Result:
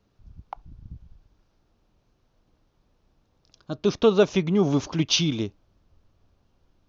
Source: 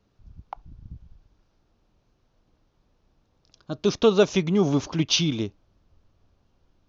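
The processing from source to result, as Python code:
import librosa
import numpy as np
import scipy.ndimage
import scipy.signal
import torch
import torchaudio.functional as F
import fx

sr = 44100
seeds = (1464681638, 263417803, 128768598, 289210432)

y = fx.high_shelf(x, sr, hz=5900.0, db=-10.0, at=(3.76, 4.7))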